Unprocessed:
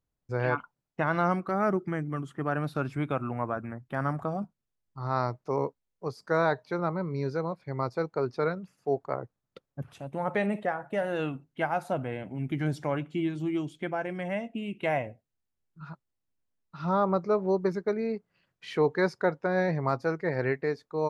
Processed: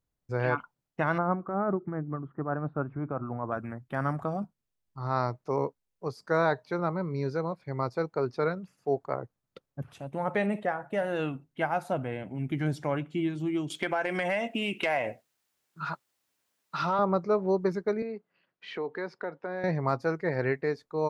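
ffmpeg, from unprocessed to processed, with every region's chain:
-filter_complex "[0:a]asettb=1/sr,asplit=3[s0][s1][s2];[s0]atrim=end=1.184[s3];[s1]atrim=start=1.18:end=3.52,asetpts=PTS-STARTPTS,afade=t=in:d=0.004:c=qsin,afade=t=out:st=2.336:d=0.004:c=qsin,lowpass=f=1300:w=0.5412,lowpass=f=1300:w=1.3066,aemphasis=mode=production:type=75kf,tremolo=f=7.4:d=0.41[s4];[s2]atrim=start=3.516[s5];[s3][s4]acrossfade=d=0.004:c1=hsin:c2=qsin[s6];[s6][s5]acrossfade=d=0.004:c1=qsin:c2=hsin,asettb=1/sr,asplit=3[s7][s8][s9];[s7]atrim=end=13.704[s10];[s8]atrim=start=13.7:end=16.99,asetpts=PTS-STARTPTS,afade=t=in:d=0.004:c=qsin,afade=t=out:st=3.286:d=0.004:c=qsin,highpass=f=830:p=1,acompressor=threshold=0.00891:ratio=4:attack=3.2:release=140:knee=1:detection=peak,aeval=exprs='0.141*sin(PI/2*3.98*val(0)/0.141)':c=same[s11];[s9]atrim=start=16.986[s12];[s10][s11]acrossfade=d=0.004:c1=hsin:c2=qsin[s13];[s13][s12]acrossfade=d=0.004:c1=qsin:c2=hsin,asettb=1/sr,asplit=3[s14][s15][s16];[s14]atrim=end=18.024[s17];[s15]atrim=start=18.02:end=19.64,asetpts=PTS-STARTPTS,afade=t=in:d=0.004:c=qsin,afade=t=out:st=1.616:d=0.004:c=qsin,acrossover=split=180 4500:gain=0.0794 1 0.1[s18][s19][s20];[s18][s19][s20]amix=inputs=3:normalize=0,acompressor=threshold=0.02:ratio=2.5:attack=3.2:release=140:knee=1:detection=peak[s21];[s16]atrim=start=19.636[s22];[s17][s21]acrossfade=d=0.004:c1=hsin:c2=qsin[s23];[s23][s22]acrossfade=d=0.004:c1=qsin:c2=hsin"

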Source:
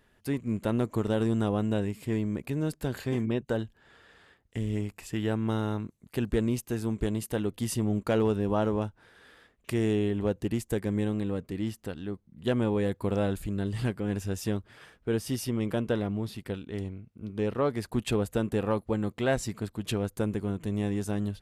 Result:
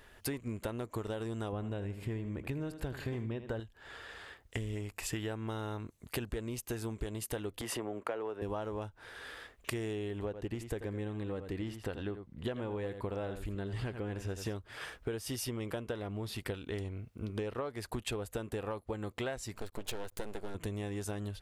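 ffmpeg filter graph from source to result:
-filter_complex "[0:a]asettb=1/sr,asplit=3[s0][s1][s2];[s0]atrim=end=1.524[s3];[s1]atrim=start=1.52:end=3.6,asetpts=PTS-STARTPTS,afade=t=in:d=0.004:c=qsin,afade=t=out:st=2.076:d=0.004:c=qsin,bass=f=250:g=6,treble=f=4000:g=-8,aecho=1:1:80|160|240|320:0.211|0.0867|0.0355|0.0146,atrim=end_sample=91728[s4];[s2]atrim=start=3.596[s5];[s3][s4]acrossfade=d=0.004:c1=hsin:c2=qsin[s6];[s6][s5]acrossfade=d=0.004:c1=qsin:c2=hsin,asettb=1/sr,asplit=3[s7][s8][s9];[s7]atrim=end=7.614[s10];[s8]atrim=start=7.61:end=8.42,asetpts=PTS-STARTPTS,afade=t=in:d=0.004:c=qsin,afade=t=out:st=0.806:d=0.004:c=qsin,highpass=97,acrossover=split=310 2400:gain=0.158 1 0.178[s11][s12][s13];[s11][s12][s13]amix=inputs=3:normalize=0,acompressor=mode=upward:threshold=0.0224:ratio=2.5:attack=3.2:release=140:knee=2.83:detection=peak[s14];[s9]atrim=start=8.416[s15];[s10][s14]acrossfade=d=0.004:c1=hsin:c2=qsin[s16];[s16][s15]acrossfade=d=0.004:c1=qsin:c2=hsin,asettb=1/sr,asplit=3[s17][s18][s19];[s17]atrim=end=10.254[s20];[s18]atrim=start=10.25:end=14.54,asetpts=PTS-STARTPTS,afade=t=in:d=0.004:c=qsin,afade=t=out:st=4.286:d=0.004:c=qsin,highshelf=f=5000:g=-12,aecho=1:1:86:0.266,atrim=end_sample=189189[s21];[s19]atrim=start=14.536[s22];[s20][s21]acrossfade=d=0.004:c1=hsin:c2=qsin[s23];[s23][s22]acrossfade=d=0.004:c1=qsin:c2=hsin,asettb=1/sr,asplit=3[s24][s25][s26];[s24]atrim=end=19.544[s27];[s25]atrim=start=19.54:end=20.55,asetpts=PTS-STARTPTS,afade=t=in:d=0.004:c=qsin,afade=t=out:st=1.006:d=0.004:c=qsin,aeval=exprs='max(val(0),0)':c=same,bandreject=f=1200:w=18[s28];[s26]atrim=start=20.546[s29];[s27][s28]acrossfade=d=0.004:c1=hsin:c2=qsin[s30];[s30][s29]acrossfade=d=0.004:c1=qsin:c2=hsin,equalizer=f=190:t=o:w=1.4:g=-10,acompressor=threshold=0.00708:ratio=16,volume=2.82"

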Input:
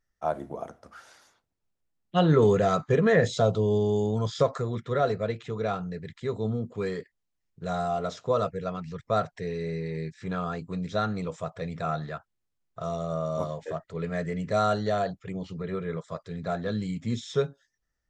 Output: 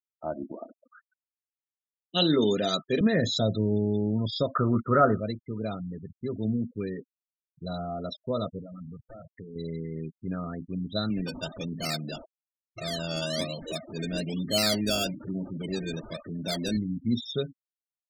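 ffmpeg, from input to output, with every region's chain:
-filter_complex "[0:a]asettb=1/sr,asplit=3[s0][s1][s2];[s0]atrim=end=0.524[s3];[s1]atrim=start=0.52:end=3.01,asetpts=PTS-STARTPTS,afade=t=in:d=0.004:c=qsin,afade=t=out:st=2.486:d=0.004:c=qsin,highpass=220,lowpass=5100,highshelf=f=2700:g=12[s4];[s2]atrim=start=3.006[s5];[s3][s4]acrossfade=d=0.004:c1=hsin:c2=qsin[s6];[s6][s5]acrossfade=d=0.004:c1=qsin:c2=hsin,asettb=1/sr,asplit=3[s7][s8][s9];[s7]atrim=end=4.554[s10];[s8]atrim=start=4.55:end=5.2,asetpts=PTS-STARTPTS,afade=t=in:d=0.004:c=qsin,afade=t=out:st=0.646:d=0.004:c=qsin,acontrast=45,lowpass=f=1300:t=q:w=5.5[s11];[s9]atrim=start=5.196[s12];[s10][s11]acrossfade=d=0.004:c1=hsin:c2=qsin[s13];[s13][s12]acrossfade=d=0.004:c1=qsin:c2=hsin,asettb=1/sr,asplit=3[s14][s15][s16];[s14]atrim=end=8.594[s17];[s15]atrim=start=8.59:end=9.56,asetpts=PTS-STARTPTS,afade=t=in:d=0.004:c=qsin,afade=t=out:st=0.966:d=0.004:c=qsin,acompressor=threshold=0.02:ratio=5:attack=3.2:release=140:knee=1:detection=peak,aeval=exprs='0.0237*(abs(mod(val(0)/0.0237+3,4)-2)-1)':c=same[s18];[s16]atrim=start=9.556[s19];[s17][s18]acrossfade=d=0.004:c1=hsin:c2=qsin[s20];[s20][s19]acrossfade=d=0.004:c1=qsin:c2=hsin,asettb=1/sr,asplit=3[s21][s22][s23];[s21]atrim=end=11.104[s24];[s22]atrim=start=11.1:end=16.77,asetpts=PTS-STARTPTS,afade=t=in:d=0.004:c=qsin,afade=t=out:st=5.666:d=0.004:c=qsin,aeval=exprs='val(0)+0.5*0.0188*sgn(val(0))':c=same,highpass=130,acrusher=samples=17:mix=1:aa=0.000001:lfo=1:lforange=10.2:lforate=1.1[s25];[s23]atrim=start=16.766[s26];[s24][s25]acrossfade=d=0.004:c1=hsin:c2=qsin[s27];[s27][s26]acrossfade=d=0.004:c1=qsin:c2=hsin,aecho=1:1:3.3:0.4,afftfilt=real='re*gte(hypot(re,im),0.0251)':imag='im*gte(hypot(re,im),0.0251)':win_size=1024:overlap=0.75,equalizer=f=250:t=o:w=1:g=5,equalizer=f=500:t=o:w=1:g=-4,equalizer=f=1000:t=o:w=1:g=-10,equalizer=f=2000:t=o:w=1:g=-6,equalizer=f=4000:t=o:w=1:g=10"

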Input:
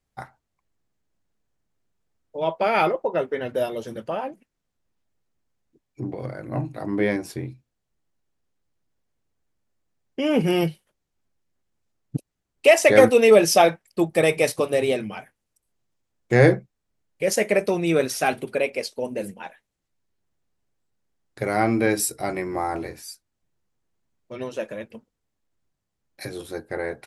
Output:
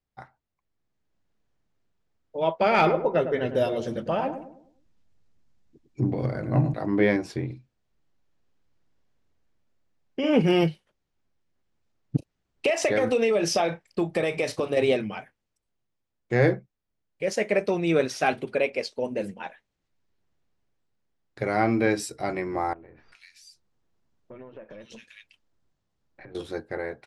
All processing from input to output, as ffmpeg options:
-filter_complex "[0:a]asettb=1/sr,asplit=3[s0][s1][s2];[s0]atrim=end=2.604[s3];[s1]atrim=start=2.6:end=6.74,asetpts=PTS-STARTPTS,afade=t=in:d=0.004:c=qsin,afade=t=out:st=4.136:d=0.004:c=qsin,bass=f=250:g=6,treble=f=4000:g=5,asoftclip=type=hard:threshold=0.299,asplit=2[s4][s5];[s5]adelay=103,lowpass=f=970:p=1,volume=0.398,asplit=2[s6][s7];[s7]adelay=103,lowpass=f=970:p=1,volume=0.43,asplit=2[s8][s9];[s9]adelay=103,lowpass=f=970:p=1,volume=0.43,asplit=2[s10][s11];[s11]adelay=103,lowpass=f=970:p=1,volume=0.43,asplit=2[s12][s13];[s13]adelay=103,lowpass=f=970:p=1,volume=0.43[s14];[s4][s6][s8][s10][s12][s14]amix=inputs=6:normalize=0,atrim=end_sample=182574[s15];[s2]atrim=start=6.736[s16];[s3][s15]acrossfade=d=0.004:c1=hsin:c2=qsin[s17];[s17][s16]acrossfade=d=0.004:c1=qsin:c2=hsin,asettb=1/sr,asplit=3[s18][s19][s20];[s18]atrim=end=7.454[s21];[s19]atrim=start=7.45:end=10.33,asetpts=PTS-STARTPTS,afade=t=in:d=0.004:c=qsin,afade=t=out:st=2.876:d=0.004:c=qsin,acompressor=threshold=0.0631:ratio=2:attack=3.2:release=140:knee=1:detection=peak,asplit=2[s22][s23];[s23]adelay=49,volume=0.596[s24];[s22][s24]amix=inputs=2:normalize=0,atrim=end_sample=127008[s25];[s20]atrim=start=10.326[s26];[s21][s25]acrossfade=d=0.004:c1=hsin:c2=qsin[s27];[s27][s26]acrossfade=d=0.004:c1=qsin:c2=hsin,asettb=1/sr,asplit=3[s28][s29][s30];[s28]atrim=end=12.164[s31];[s29]atrim=start=12.16:end=14.77,asetpts=PTS-STARTPTS,afade=t=in:d=0.004:c=qsin,afade=t=out:st=2.606:d=0.004:c=qsin,acompressor=threshold=0.0891:ratio=16:attack=3.2:release=140:knee=1:detection=peak,asplit=2[s32][s33];[s33]adelay=35,volume=0.211[s34];[s32][s34]amix=inputs=2:normalize=0,atrim=end_sample=115101[s35];[s30]atrim=start=14.766[s36];[s31][s35]acrossfade=d=0.004:c1=hsin:c2=qsin[s37];[s37][s36]acrossfade=d=0.004:c1=qsin:c2=hsin,asettb=1/sr,asplit=3[s38][s39][s40];[s38]atrim=end=22.734[s41];[s39]atrim=start=22.73:end=26.35,asetpts=PTS-STARTPTS,afade=t=in:d=0.004:c=qsin,afade=t=out:st=3.616:d=0.004:c=qsin,aeval=exprs='if(lt(val(0),0),0.708*val(0),val(0))':c=same,acrossover=split=2300[s42][s43];[s43]adelay=390[s44];[s42][s44]amix=inputs=2:normalize=0,atrim=end_sample=159642,acompressor=threshold=0.00562:ratio=6:attack=3.2:release=140:knee=1:detection=peak[s45];[s40]atrim=start=26.346[s46];[s41][s45]acrossfade=d=0.004:c1=hsin:c2=qsin[s47];[s47][s46]acrossfade=d=0.004:c1=qsin:c2=hsin,lowpass=5400,dynaudnorm=f=300:g=7:m=3.76,volume=0.422"

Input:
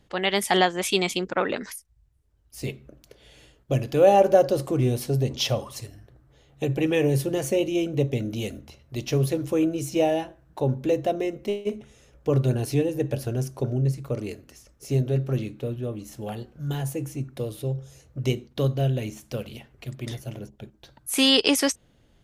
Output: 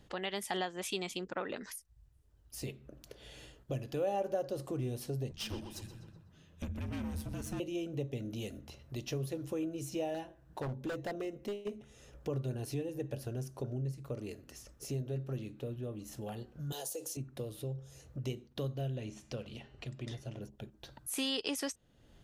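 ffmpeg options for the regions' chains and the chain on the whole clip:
-filter_complex "[0:a]asettb=1/sr,asplit=3[s0][s1][s2];[s0]atrim=end=5.314[s3];[s1]atrim=start=5.31:end=7.6,asetpts=PTS-STARTPTS,afade=t=in:d=0.004:c=qsin,afade=t=out:st=2.286:d=0.004:c=qsin,aeval=exprs='(tanh(14.1*val(0)+0.7)-tanh(0.7))/14.1':c=same,afreqshift=-220,asplit=2[s4][s5];[s5]adelay=124,lowpass=f=4400:p=1,volume=0.251,asplit=2[s6][s7];[s7]adelay=124,lowpass=f=4400:p=1,volume=0.48,asplit=2[s8][s9];[s9]adelay=124,lowpass=f=4400:p=1,volume=0.48,asplit=2[s10][s11];[s11]adelay=124,lowpass=f=4400:p=1,volume=0.48,asplit=2[s12][s13];[s13]adelay=124,lowpass=f=4400:p=1,volume=0.48[s14];[s4][s6][s8][s10][s12][s14]amix=inputs=6:normalize=0,atrim=end_sample=100989[s15];[s2]atrim=start=7.596[s16];[s3][s15]acrossfade=d=0.004:c1=hsin:c2=qsin[s17];[s17][s16]acrossfade=d=0.004:c1=qsin:c2=hsin,asettb=1/sr,asplit=3[s18][s19][s20];[s18]atrim=end=10.144[s21];[s19]atrim=start=10.14:end=11.68,asetpts=PTS-STARTPTS,afade=t=in:d=0.004:c=qsin,afade=t=out:st=1.536:d=0.004:c=qsin,aeval=exprs='0.1*(abs(mod(val(0)/0.1+3,4)-2)-1)':c=same,bandreject=f=1300:w=20[s22];[s20]atrim=start=11.676[s23];[s21][s22]acrossfade=d=0.004:c1=hsin:c2=qsin[s24];[s24][s23]acrossfade=d=0.004:c1=qsin:c2=hsin,asettb=1/sr,asplit=3[s25][s26][s27];[s25]atrim=end=16.724[s28];[s26]atrim=start=16.72:end=17.17,asetpts=PTS-STARTPTS,afade=t=in:d=0.004:c=qsin,afade=t=out:st=0.446:d=0.004:c=qsin,highpass=f=500:t=q:w=2.7,highshelf=f=3000:t=q:w=1.5:g=12.5,acompressor=threshold=0.0398:ratio=2.5:attack=3.2:release=140:knee=1:detection=peak[s29];[s27]atrim=start=17.166[s30];[s28][s29]acrossfade=d=0.004:c1=hsin:c2=qsin[s31];[s31][s30]acrossfade=d=0.004:c1=qsin:c2=hsin,asettb=1/sr,asplit=3[s32][s33][s34];[s32]atrim=end=18.964[s35];[s33]atrim=start=18.96:end=20.41,asetpts=PTS-STARTPTS,afade=t=in:d=0.004:c=qsin,afade=t=out:st=1.446:d=0.004:c=qsin,lowpass=6900,bandreject=f=201.5:t=h:w=4,bandreject=f=403:t=h:w=4,bandreject=f=604.5:t=h:w=4,bandreject=f=806:t=h:w=4,bandreject=f=1007.5:t=h:w=4,bandreject=f=1209:t=h:w=4,bandreject=f=1410.5:t=h:w=4,bandreject=f=1612:t=h:w=4,bandreject=f=1813.5:t=h:w=4,bandreject=f=2015:t=h:w=4,bandreject=f=2216.5:t=h:w=4,bandreject=f=2418:t=h:w=4,bandreject=f=2619.5:t=h:w=4,bandreject=f=2821:t=h:w=4,bandreject=f=3022.5:t=h:w=4,bandreject=f=3224:t=h:w=4,bandreject=f=3425.5:t=h:w=4,bandreject=f=3627:t=h:w=4,bandreject=f=3828.5:t=h:w=4,bandreject=f=4030:t=h:w=4,bandreject=f=4231.5:t=h:w=4,bandreject=f=4433:t=h:w=4,bandreject=f=4634.5:t=h:w=4,bandreject=f=4836:t=h:w=4,bandreject=f=5037.5:t=h:w=4,bandreject=f=5239:t=h:w=4,bandreject=f=5440.5:t=h:w=4,bandreject=f=5642:t=h:w=4,bandreject=f=5843.5:t=h:w=4,bandreject=f=6045:t=h:w=4,bandreject=f=6246.5:t=h:w=4,bandreject=f=6448:t=h:w=4,bandreject=f=6649.5:t=h:w=4,bandreject=f=6851:t=h:w=4,bandreject=f=7052.5:t=h:w=4,bandreject=f=7254:t=h:w=4,bandreject=f=7455.5:t=h:w=4,bandreject=f=7657:t=h:w=4[s36];[s34]atrim=start=20.406[s37];[s35][s36]acrossfade=d=0.004:c1=hsin:c2=qsin[s38];[s38][s37]acrossfade=d=0.004:c1=qsin:c2=hsin,bandreject=f=2200:w=16,acompressor=threshold=0.00501:ratio=2"

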